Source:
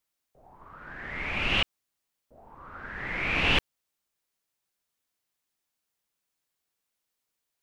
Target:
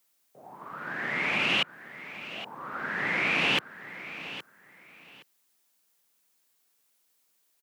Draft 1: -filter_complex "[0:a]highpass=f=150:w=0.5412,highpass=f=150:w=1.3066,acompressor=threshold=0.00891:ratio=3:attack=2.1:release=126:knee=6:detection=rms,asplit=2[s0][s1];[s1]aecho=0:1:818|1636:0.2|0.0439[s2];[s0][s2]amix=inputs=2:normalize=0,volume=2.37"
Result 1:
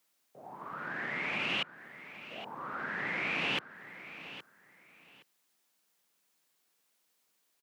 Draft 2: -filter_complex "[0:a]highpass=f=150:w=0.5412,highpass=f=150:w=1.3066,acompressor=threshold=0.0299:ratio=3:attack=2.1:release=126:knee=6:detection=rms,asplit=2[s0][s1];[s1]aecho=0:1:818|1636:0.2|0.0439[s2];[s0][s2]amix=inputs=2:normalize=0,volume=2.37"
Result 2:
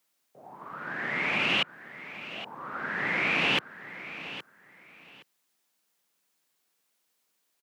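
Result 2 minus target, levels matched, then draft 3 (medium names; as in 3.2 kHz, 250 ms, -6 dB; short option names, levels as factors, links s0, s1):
8 kHz band -3.0 dB
-filter_complex "[0:a]highpass=f=150:w=0.5412,highpass=f=150:w=1.3066,highshelf=f=6800:g=6.5,acompressor=threshold=0.0299:ratio=3:attack=2.1:release=126:knee=6:detection=rms,asplit=2[s0][s1];[s1]aecho=0:1:818|1636:0.2|0.0439[s2];[s0][s2]amix=inputs=2:normalize=0,volume=2.37"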